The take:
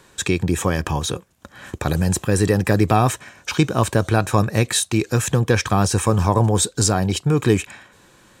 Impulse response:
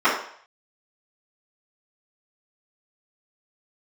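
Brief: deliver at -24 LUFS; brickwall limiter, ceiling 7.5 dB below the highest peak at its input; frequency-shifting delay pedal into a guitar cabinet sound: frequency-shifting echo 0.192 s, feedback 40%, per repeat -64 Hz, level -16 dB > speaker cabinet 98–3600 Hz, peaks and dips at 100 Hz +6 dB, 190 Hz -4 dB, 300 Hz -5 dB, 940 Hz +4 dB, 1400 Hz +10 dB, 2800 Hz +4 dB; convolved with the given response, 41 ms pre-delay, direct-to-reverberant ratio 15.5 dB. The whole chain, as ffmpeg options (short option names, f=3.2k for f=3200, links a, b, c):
-filter_complex "[0:a]alimiter=limit=-9.5dB:level=0:latency=1,asplit=2[a][b];[1:a]atrim=start_sample=2205,adelay=41[c];[b][c]afir=irnorm=-1:irlink=0,volume=-37dB[d];[a][d]amix=inputs=2:normalize=0,asplit=5[e][f][g][h][i];[f]adelay=192,afreqshift=-64,volume=-16dB[j];[g]adelay=384,afreqshift=-128,volume=-24dB[k];[h]adelay=576,afreqshift=-192,volume=-31.9dB[l];[i]adelay=768,afreqshift=-256,volume=-39.9dB[m];[e][j][k][l][m]amix=inputs=5:normalize=0,highpass=98,equalizer=f=100:t=q:w=4:g=6,equalizer=f=190:t=q:w=4:g=-4,equalizer=f=300:t=q:w=4:g=-5,equalizer=f=940:t=q:w=4:g=4,equalizer=f=1.4k:t=q:w=4:g=10,equalizer=f=2.8k:t=q:w=4:g=4,lowpass=f=3.6k:w=0.5412,lowpass=f=3.6k:w=1.3066,volume=-2dB"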